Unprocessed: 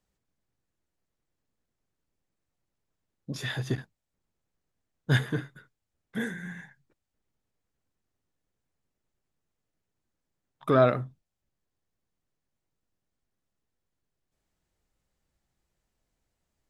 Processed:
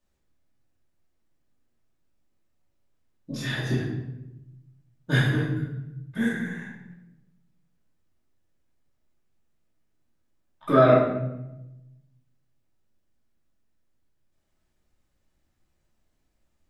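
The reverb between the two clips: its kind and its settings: shoebox room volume 340 m³, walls mixed, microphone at 2.6 m; gain -3.5 dB

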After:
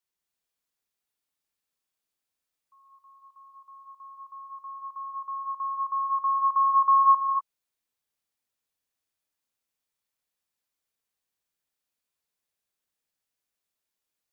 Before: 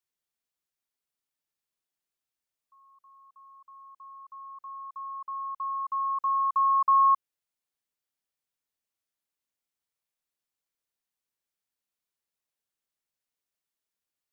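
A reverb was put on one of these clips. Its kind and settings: non-linear reverb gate 0.27 s rising, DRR 0 dB

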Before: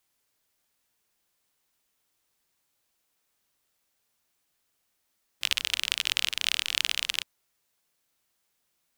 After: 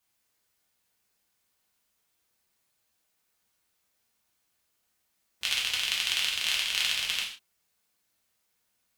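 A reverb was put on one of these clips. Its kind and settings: non-linear reverb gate 0.18 s falling, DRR -4 dB; gain -5 dB

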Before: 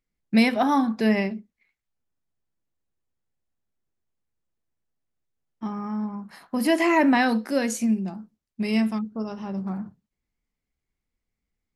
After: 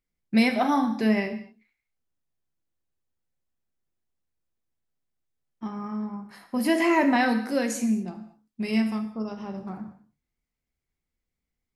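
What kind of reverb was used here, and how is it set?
non-linear reverb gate 0.26 s falling, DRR 6.5 dB; gain -2.5 dB

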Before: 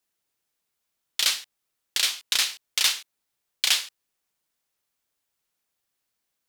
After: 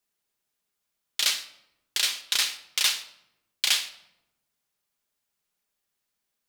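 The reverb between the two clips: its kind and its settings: shoebox room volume 3400 m³, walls furnished, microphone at 1.3 m; gain -2 dB

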